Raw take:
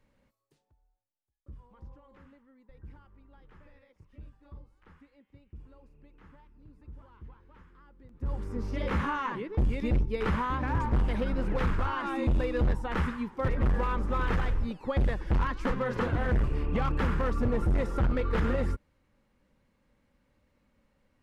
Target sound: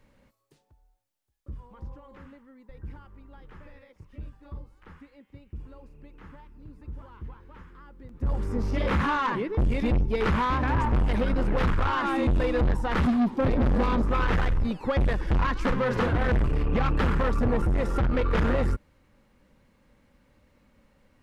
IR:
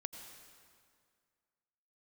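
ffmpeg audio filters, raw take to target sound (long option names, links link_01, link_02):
-filter_complex "[0:a]asettb=1/sr,asplit=3[link_01][link_02][link_03];[link_01]atrim=end=13.014[link_04];[link_02]atrim=start=13.01:end=14.02,asetpts=PTS-STARTPTS,afade=type=in:duration=0.004:curve=qsin,afade=type=out:start_time=1.006:duration=0.004:curve=qsin,equalizer=frequency=250:width_type=o:width=0.67:gain=12,equalizer=frequency=630:width_type=o:width=0.67:gain=4,equalizer=frequency=1600:width_type=o:width=0.67:gain=-7,equalizer=frequency=4000:width_type=o:width=0.67:gain=7[link_05];[link_03]atrim=start=14.016[link_06];[link_04][link_05]acrossfade=duration=0.004:curve1=hsin:curve2=qsin[link_07];[link_07][link_06]acrossfade=duration=0.004:curve1=qsin:curve2=hsin,asettb=1/sr,asplit=3[link_08][link_09][link_10];[link_08]atrim=end=17.564[link_11];[link_09]atrim=start=17.56:end=18.14,asetpts=PTS-STARTPTS,afade=type=in:duration=0.004:curve=qsin,afade=type=out:start_time=0.576:duration=0.004:curve=qsin,acompressor=threshold=-26dB:ratio=6[link_12];[link_10]atrim=start=18.136[link_13];[link_11][link_12]acrossfade=duration=0.004:curve1=hsin:curve2=qsin[link_14];[link_14][link_13]acrossfade=duration=0.004:curve1=qsin:curve2=hsin,asoftclip=type=tanh:threshold=-27.5dB,volume=8dB"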